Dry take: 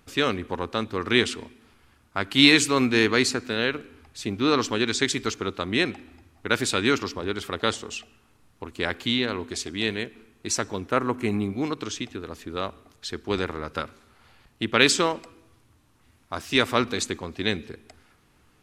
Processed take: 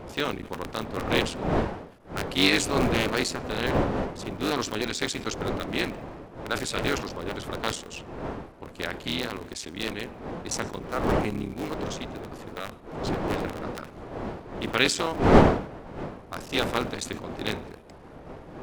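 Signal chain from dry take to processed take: cycle switcher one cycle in 3, muted; wind noise 590 Hz -27 dBFS; decay stretcher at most 110 dB/s; trim -4 dB

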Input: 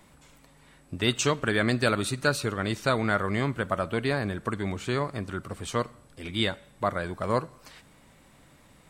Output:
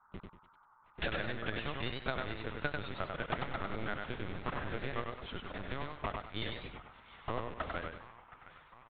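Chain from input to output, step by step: slices played last to first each 197 ms, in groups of 5; steep high-pass 190 Hz 72 dB/octave; comb 6 ms, depth 31%; compression 3:1, threshold -36 dBFS, peak gain reduction 12.5 dB; bit crusher 7-bit; band noise 810–1400 Hz -61 dBFS; Chebyshev shaper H 3 -9 dB, 5 -27 dB, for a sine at -19 dBFS; on a send: feedback echo behind a band-pass 714 ms, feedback 65%, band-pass 1.4 kHz, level -15 dB; on the sum: LPC vocoder at 8 kHz pitch kept; modulated delay 97 ms, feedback 31%, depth 101 cents, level -4 dB; trim +10.5 dB

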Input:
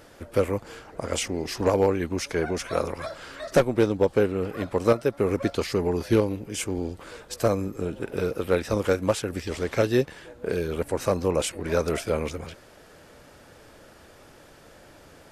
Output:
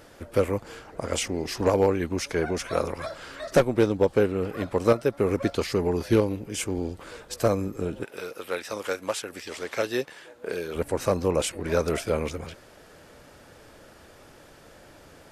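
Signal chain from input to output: 8.03–10.74 s: high-pass 1.4 kHz -> 480 Hz 6 dB/octave

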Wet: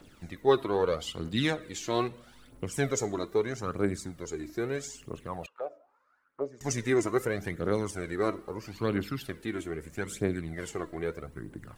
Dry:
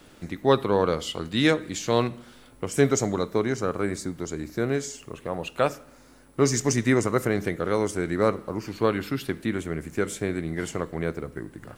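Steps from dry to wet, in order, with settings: 5.46–6.61 s: auto-wah 570–1500 Hz, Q 4.7, down, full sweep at -23.5 dBFS; phaser 0.78 Hz, delay 3.2 ms, feedback 56%; trim -7 dB

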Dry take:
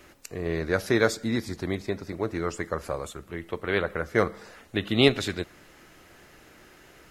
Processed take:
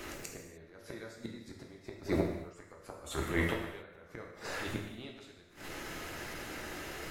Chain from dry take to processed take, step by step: reverse echo 134 ms -19 dB; inverted gate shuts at -21 dBFS, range -36 dB; transient shaper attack -10 dB, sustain +2 dB; gated-style reverb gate 330 ms falling, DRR 0 dB; trim +7.5 dB

